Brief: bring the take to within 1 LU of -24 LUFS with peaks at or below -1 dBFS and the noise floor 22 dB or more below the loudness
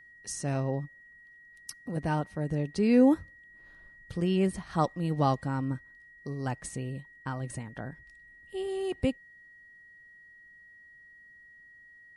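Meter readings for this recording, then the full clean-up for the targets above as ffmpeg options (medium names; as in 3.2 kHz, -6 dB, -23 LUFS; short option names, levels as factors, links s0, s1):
steady tone 1.9 kHz; tone level -52 dBFS; loudness -30.5 LUFS; peak level -12.0 dBFS; loudness target -24.0 LUFS
-> -af "bandreject=f=1900:w=30"
-af "volume=2.11"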